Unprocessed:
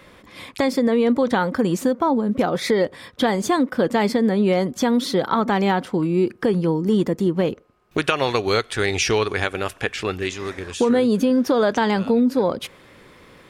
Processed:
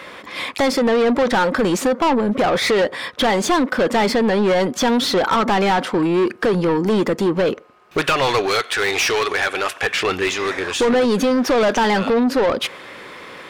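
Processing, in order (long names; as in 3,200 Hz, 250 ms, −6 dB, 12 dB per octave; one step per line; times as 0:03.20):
mid-hump overdrive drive 26 dB, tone 3,800 Hz, clips at −3.5 dBFS
0:08.46–0:09.83: low-shelf EQ 330 Hz −8 dB
level −5 dB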